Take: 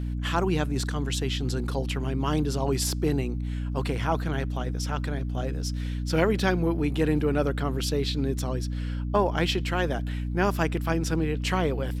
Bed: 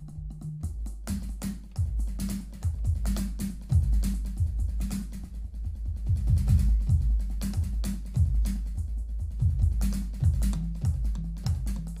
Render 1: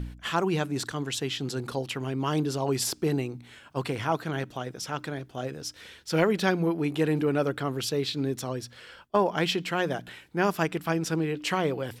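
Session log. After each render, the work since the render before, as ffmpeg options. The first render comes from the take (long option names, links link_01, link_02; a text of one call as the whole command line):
ffmpeg -i in.wav -af "bandreject=frequency=60:width_type=h:width=4,bandreject=frequency=120:width_type=h:width=4,bandreject=frequency=180:width_type=h:width=4,bandreject=frequency=240:width_type=h:width=4,bandreject=frequency=300:width_type=h:width=4" out.wav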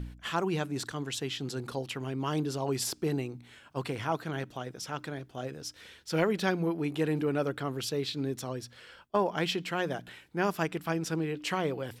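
ffmpeg -i in.wav -af "volume=-4dB" out.wav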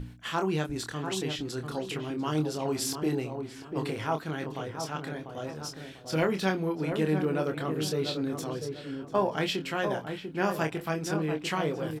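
ffmpeg -i in.wav -filter_complex "[0:a]asplit=2[link_01][link_02];[link_02]adelay=26,volume=-6dB[link_03];[link_01][link_03]amix=inputs=2:normalize=0,asplit=2[link_04][link_05];[link_05]adelay=694,lowpass=frequency=1100:poles=1,volume=-5.5dB,asplit=2[link_06][link_07];[link_07]adelay=694,lowpass=frequency=1100:poles=1,volume=0.37,asplit=2[link_08][link_09];[link_09]adelay=694,lowpass=frequency=1100:poles=1,volume=0.37,asplit=2[link_10][link_11];[link_11]adelay=694,lowpass=frequency=1100:poles=1,volume=0.37[link_12];[link_04][link_06][link_08][link_10][link_12]amix=inputs=5:normalize=0" out.wav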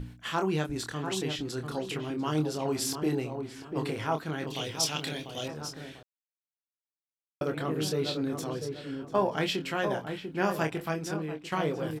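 ffmpeg -i in.wav -filter_complex "[0:a]asettb=1/sr,asplit=3[link_01][link_02][link_03];[link_01]atrim=end=4.474[link_04];[link_02]atrim=start=4.47:end=5.48,asetpts=PTS-STARTPTS,afade=type=in:duration=0.004:curve=qsin,afade=type=out:start_time=1.006:duration=0.004:curve=qsin,highshelf=frequency=2100:width_type=q:width=1.5:gain=11.5[link_05];[link_03]atrim=start=5.476[link_06];[link_04][link_05]acrossfade=duration=0.004:curve1=hsin:curve2=qsin[link_07];[link_07][link_06]acrossfade=duration=0.004:curve1=qsin:curve2=hsin,asplit=4[link_08][link_09][link_10][link_11];[link_08]atrim=end=6.03,asetpts=PTS-STARTPTS,afade=type=out:start_time=6.026:duration=0.004:curve=hsin[link_12];[link_09]atrim=start=6.03:end=7.41,asetpts=PTS-STARTPTS,volume=0[link_13];[link_10]atrim=start=7.41:end=11.52,asetpts=PTS-STARTPTS,afade=type=in:duration=0.004:curve=hsin,afade=type=out:start_time=3.41:duration=0.7:silence=0.298538[link_14];[link_11]atrim=start=11.52,asetpts=PTS-STARTPTS,afade=type=in:duration=0.004:curve=hsin:silence=0.298538[link_15];[link_12][link_13][link_14][link_15]concat=n=4:v=0:a=1" out.wav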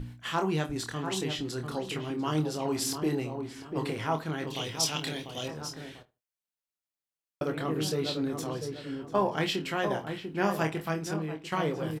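ffmpeg -i in.wav -filter_complex "[0:a]asplit=2[link_01][link_02];[link_02]adelay=25,volume=-11.5dB[link_03];[link_01][link_03]amix=inputs=2:normalize=0,asplit=2[link_04][link_05];[link_05]adelay=76,lowpass=frequency=1900:poles=1,volume=-19.5dB,asplit=2[link_06][link_07];[link_07]adelay=76,lowpass=frequency=1900:poles=1,volume=0.2[link_08];[link_04][link_06][link_08]amix=inputs=3:normalize=0" out.wav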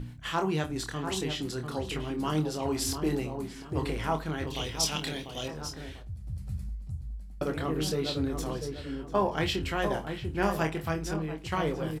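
ffmpeg -i in.wav -i bed.wav -filter_complex "[1:a]volume=-13.5dB[link_01];[0:a][link_01]amix=inputs=2:normalize=0" out.wav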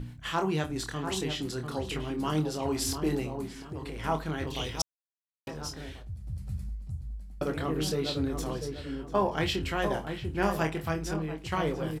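ffmpeg -i in.wav -filter_complex "[0:a]asplit=3[link_01][link_02][link_03];[link_01]afade=type=out:start_time=3.59:duration=0.02[link_04];[link_02]acompressor=threshold=-34dB:ratio=6:attack=3.2:release=140:knee=1:detection=peak,afade=type=in:start_time=3.59:duration=0.02,afade=type=out:start_time=4.03:duration=0.02[link_05];[link_03]afade=type=in:start_time=4.03:duration=0.02[link_06];[link_04][link_05][link_06]amix=inputs=3:normalize=0,asplit=3[link_07][link_08][link_09];[link_07]atrim=end=4.82,asetpts=PTS-STARTPTS,afade=type=out:start_time=4.816:duration=0.004:curve=hsin[link_10];[link_08]atrim=start=4.82:end=5.47,asetpts=PTS-STARTPTS,volume=0[link_11];[link_09]atrim=start=5.47,asetpts=PTS-STARTPTS,afade=type=in:duration=0.004:curve=hsin[link_12];[link_10][link_11][link_12]concat=n=3:v=0:a=1" out.wav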